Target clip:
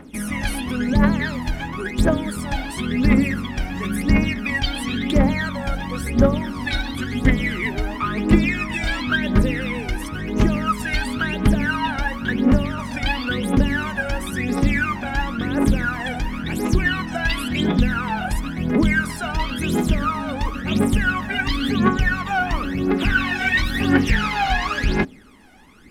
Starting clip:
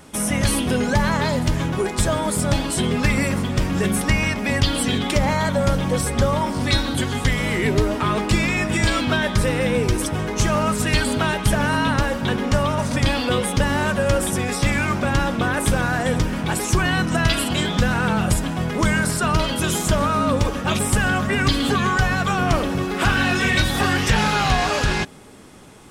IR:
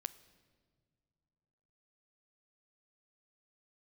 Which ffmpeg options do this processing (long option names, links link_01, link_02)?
-af "equalizer=frequency=125:width_type=o:width=1:gain=-8,equalizer=frequency=250:width_type=o:width=1:gain=9,equalizer=frequency=2000:width_type=o:width=1:gain=6,equalizer=frequency=8000:width_type=o:width=1:gain=-8,aphaser=in_gain=1:out_gain=1:delay=1.4:decay=0.78:speed=0.96:type=triangular,volume=-8.5dB"